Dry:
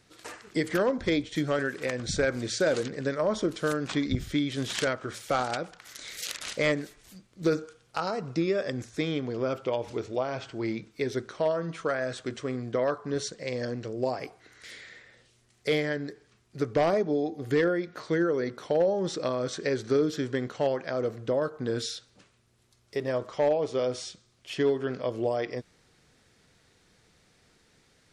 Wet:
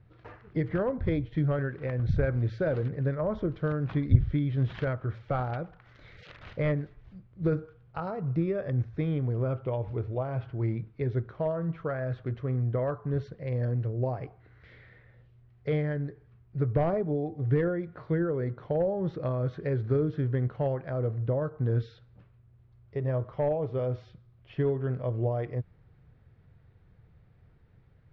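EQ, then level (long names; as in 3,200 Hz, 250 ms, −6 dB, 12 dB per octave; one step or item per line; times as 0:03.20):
high-frequency loss of the air 160 metres
head-to-tape spacing loss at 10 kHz 40 dB
low shelf with overshoot 170 Hz +10.5 dB, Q 1.5
0.0 dB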